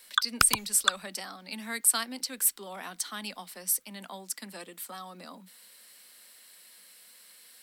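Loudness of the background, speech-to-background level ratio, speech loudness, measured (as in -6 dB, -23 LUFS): -28.5 LUFS, -1.5 dB, -30.0 LUFS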